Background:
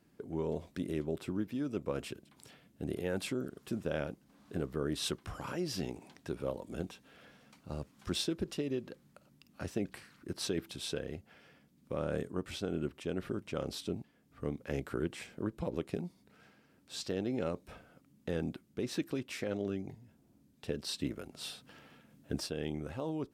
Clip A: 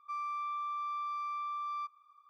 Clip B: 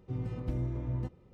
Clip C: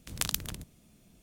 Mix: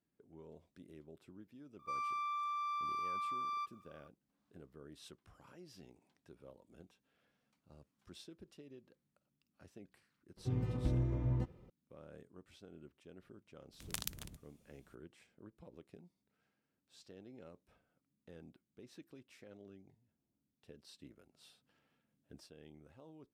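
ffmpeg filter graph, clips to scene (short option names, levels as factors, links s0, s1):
-filter_complex "[0:a]volume=0.1[s0];[1:a]highshelf=f=2300:g=10,atrim=end=2.29,asetpts=PTS-STARTPTS,volume=0.631,afade=t=in:d=0.004:c=hsin,afade=t=out:st=2.286:d=0.004:c=hsin,adelay=1790[s1];[2:a]atrim=end=1.33,asetpts=PTS-STARTPTS,volume=0.944,afade=t=in:d=0.004:c=hsin,afade=t=out:st=1.326:d=0.004:c=hsin,adelay=10370[s2];[3:a]atrim=end=1.22,asetpts=PTS-STARTPTS,volume=0.299,afade=t=in:d=0.004:c=hsin,afade=t=out:st=1.216:d=0.004:c=hsin,adelay=13730[s3];[s0][s1][s2][s3]amix=inputs=4:normalize=0"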